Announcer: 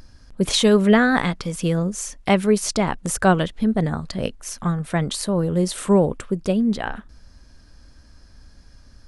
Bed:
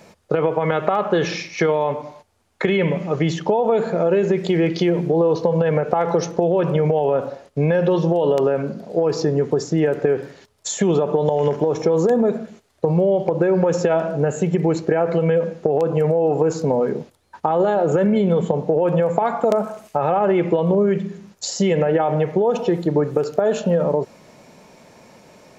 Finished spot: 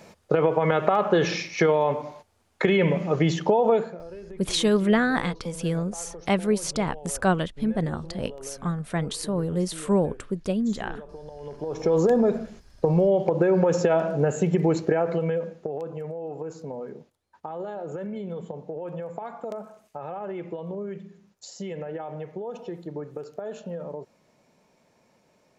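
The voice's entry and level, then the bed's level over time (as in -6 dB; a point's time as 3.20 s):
4.00 s, -5.5 dB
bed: 3.74 s -2 dB
4.03 s -23.5 dB
11.36 s -23.5 dB
11.93 s -3 dB
14.84 s -3 dB
16.03 s -16.5 dB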